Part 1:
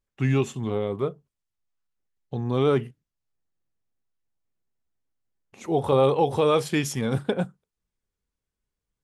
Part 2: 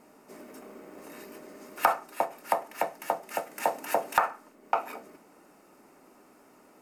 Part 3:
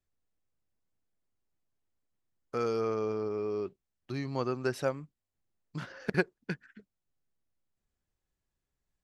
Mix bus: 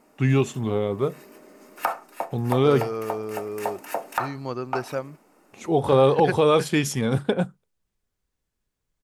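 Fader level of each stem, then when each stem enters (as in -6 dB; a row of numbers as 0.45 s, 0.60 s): +2.5 dB, -2.0 dB, +1.5 dB; 0.00 s, 0.00 s, 0.10 s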